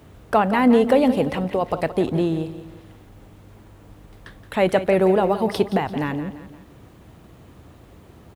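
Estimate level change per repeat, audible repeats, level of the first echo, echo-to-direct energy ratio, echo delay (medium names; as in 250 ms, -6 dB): -7.0 dB, 3, -12.5 dB, -11.5 dB, 172 ms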